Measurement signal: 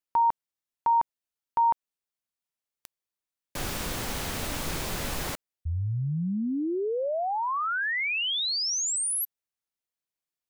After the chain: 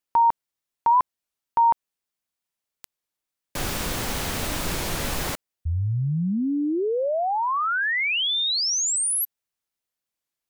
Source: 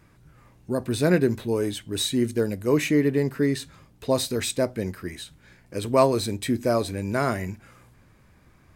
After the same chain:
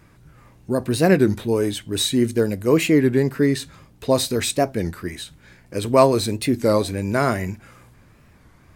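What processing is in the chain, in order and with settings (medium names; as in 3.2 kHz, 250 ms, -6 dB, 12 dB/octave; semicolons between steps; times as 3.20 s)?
warped record 33 1/3 rpm, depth 160 cents; trim +4.5 dB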